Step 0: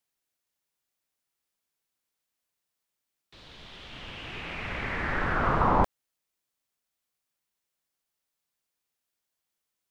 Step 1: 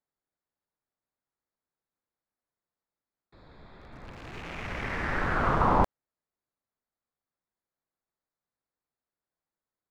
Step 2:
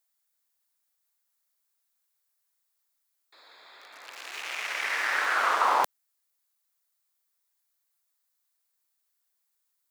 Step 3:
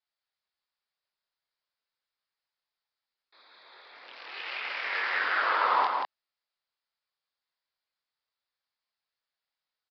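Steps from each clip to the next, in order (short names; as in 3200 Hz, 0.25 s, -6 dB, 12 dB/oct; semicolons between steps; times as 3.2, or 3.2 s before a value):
Wiener smoothing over 15 samples
Bessel high-pass 520 Hz, order 4; tilt +4.5 dB/oct; gain +2.5 dB
chorus voices 4, 0.83 Hz, delay 23 ms, depth 1.2 ms; echo 0.181 s -3.5 dB; downsampling 11025 Hz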